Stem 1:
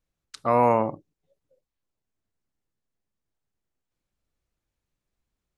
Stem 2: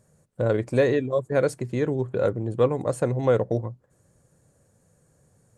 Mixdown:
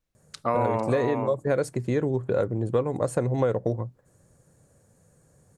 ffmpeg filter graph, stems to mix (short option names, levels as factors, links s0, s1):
-filter_complex "[0:a]volume=1.06,asplit=2[s0][s1];[s1]volume=0.398[s2];[1:a]equalizer=f=3000:t=o:w=0.77:g=-2.5,adelay=150,volume=1.26[s3];[s2]aecho=0:1:449:1[s4];[s0][s3][s4]amix=inputs=3:normalize=0,acompressor=threshold=0.1:ratio=6"